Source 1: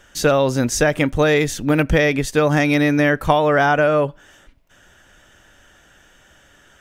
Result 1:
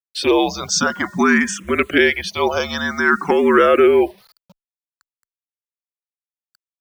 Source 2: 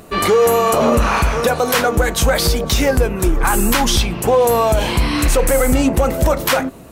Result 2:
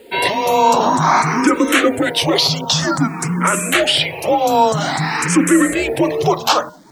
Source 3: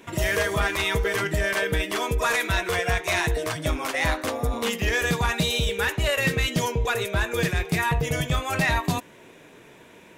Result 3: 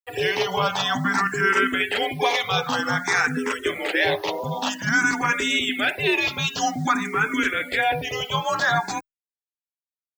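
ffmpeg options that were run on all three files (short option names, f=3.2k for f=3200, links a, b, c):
-filter_complex "[0:a]asplit=2[a][b];[b]acontrast=40,volume=2dB[c];[a][c]amix=inputs=2:normalize=0,bandreject=f=410.5:t=h:w=4,bandreject=f=821:t=h:w=4,bandreject=f=1.2315k:t=h:w=4,bandreject=f=1.642k:t=h:w=4,bandreject=f=2.0525k:t=h:w=4,afreqshift=-210,highpass=300,lowpass=7.5k,afftfilt=real='re*gte(hypot(re,im),0.0501)':imag='im*gte(hypot(re,im),0.0501)':win_size=1024:overlap=0.75,acrusher=bits=6:mix=0:aa=0.000001,asplit=2[d][e];[e]afreqshift=0.52[f];[d][f]amix=inputs=2:normalize=1,volume=-3dB"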